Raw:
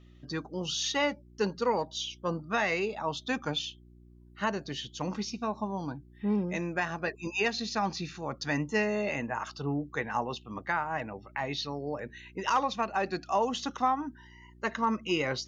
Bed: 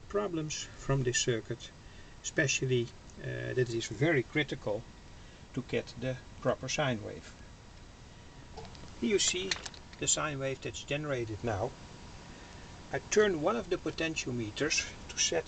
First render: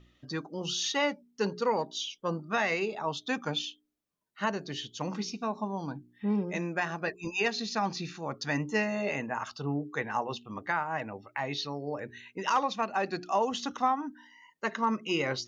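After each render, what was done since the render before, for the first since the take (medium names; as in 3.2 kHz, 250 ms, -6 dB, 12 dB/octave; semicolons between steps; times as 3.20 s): de-hum 60 Hz, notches 7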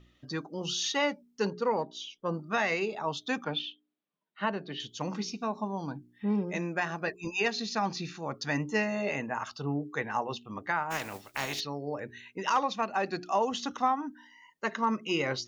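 1.50–2.34 s: treble shelf 3 kHz -10 dB; 3.44–4.80 s: Chebyshev band-pass 160–3600 Hz, order 3; 10.90–11.59 s: spectral contrast reduction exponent 0.39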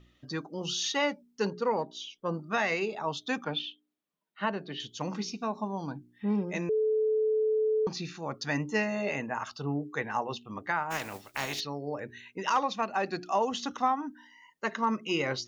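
6.69–7.87 s: bleep 434 Hz -23.5 dBFS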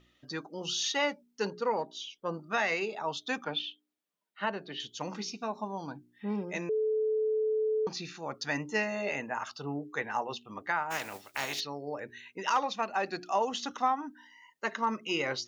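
bass shelf 240 Hz -9.5 dB; band-stop 1.1 kHz, Q 23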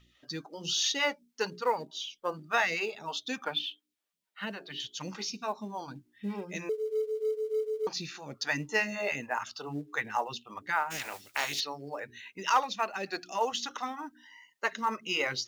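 phase shifter stages 2, 3.4 Hz, lowest notch 110–1100 Hz; in parallel at -10.5 dB: short-mantissa float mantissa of 2-bit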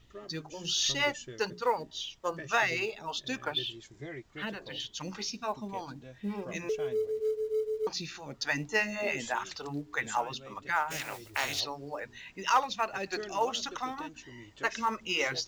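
add bed -14.5 dB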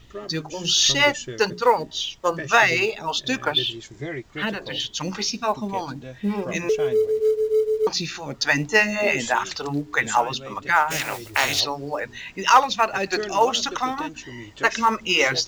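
trim +11 dB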